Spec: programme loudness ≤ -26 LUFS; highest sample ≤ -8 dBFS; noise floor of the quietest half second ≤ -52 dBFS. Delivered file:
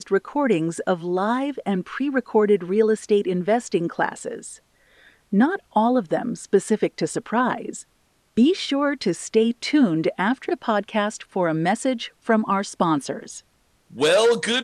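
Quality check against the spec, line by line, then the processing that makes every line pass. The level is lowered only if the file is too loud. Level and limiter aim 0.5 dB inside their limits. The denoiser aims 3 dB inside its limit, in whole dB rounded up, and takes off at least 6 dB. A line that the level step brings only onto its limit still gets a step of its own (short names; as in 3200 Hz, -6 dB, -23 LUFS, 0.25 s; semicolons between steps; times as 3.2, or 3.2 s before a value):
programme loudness -22.0 LUFS: fail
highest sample -5.5 dBFS: fail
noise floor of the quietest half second -64 dBFS: OK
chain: gain -4.5 dB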